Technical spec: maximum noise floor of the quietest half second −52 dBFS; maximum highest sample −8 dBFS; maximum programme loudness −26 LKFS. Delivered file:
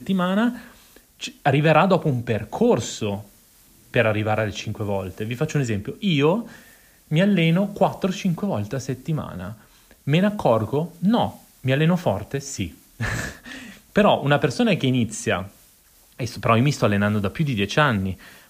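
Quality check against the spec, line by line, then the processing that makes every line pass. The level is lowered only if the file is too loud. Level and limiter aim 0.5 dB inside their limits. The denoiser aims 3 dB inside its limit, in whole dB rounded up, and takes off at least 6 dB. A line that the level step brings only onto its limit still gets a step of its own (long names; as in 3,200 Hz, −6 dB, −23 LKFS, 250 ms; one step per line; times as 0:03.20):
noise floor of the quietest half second −55 dBFS: in spec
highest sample −5.0 dBFS: out of spec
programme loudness −22.0 LKFS: out of spec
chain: level −4.5 dB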